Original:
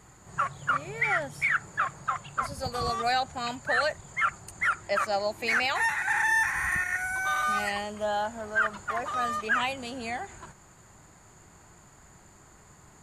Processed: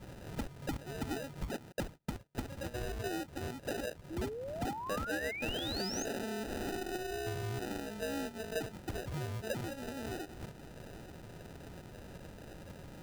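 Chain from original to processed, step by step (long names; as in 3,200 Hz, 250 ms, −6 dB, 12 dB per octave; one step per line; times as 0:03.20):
0:01.72–0:02.35: noise gate −36 dBFS, range −36 dB
treble cut that deepens with the level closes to 1,100 Hz, closed at −21.5 dBFS
downward compressor 2.5 to 1, threshold −49 dBFS, peak gain reduction 17 dB
decimation without filtering 40×
0:04.10–0:06.05: sound drawn into the spectrogram rise 310–6,700 Hz −47 dBFS
level +5.5 dB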